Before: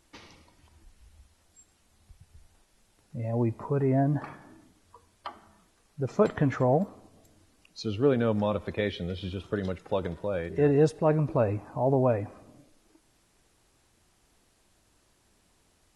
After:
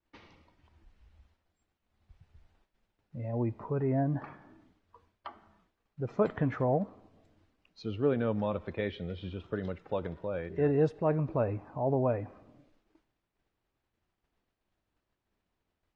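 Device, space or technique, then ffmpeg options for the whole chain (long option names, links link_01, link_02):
hearing-loss simulation: -af "lowpass=3100,agate=range=-33dB:threshold=-59dB:ratio=3:detection=peak,volume=-4.5dB"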